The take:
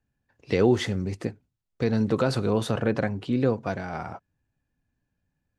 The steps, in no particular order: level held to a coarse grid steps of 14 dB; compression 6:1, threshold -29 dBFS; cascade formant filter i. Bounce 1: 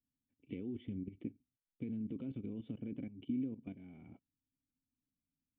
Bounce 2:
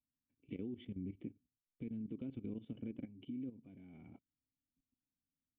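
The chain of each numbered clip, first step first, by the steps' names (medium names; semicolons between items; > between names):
level held to a coarse grid > compression > cascade formant filter; compression > cascade formant filter > level held to a coarse grid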